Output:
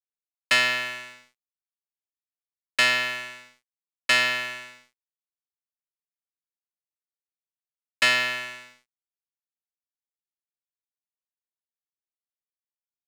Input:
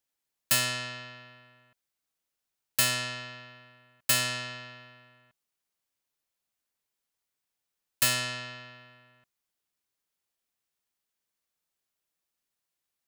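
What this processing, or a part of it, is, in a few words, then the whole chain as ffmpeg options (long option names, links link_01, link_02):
pocket radio on a weak battery: -af "highpass=330,lowpass=4000,aeval=exprs='sgn(val(0))*max(abs(val(0))-0.00473,0)':channel_layout=same,equalizer=frequency=2100:width_type=o:width=0.51:gain=8.5,volume=7.5dB"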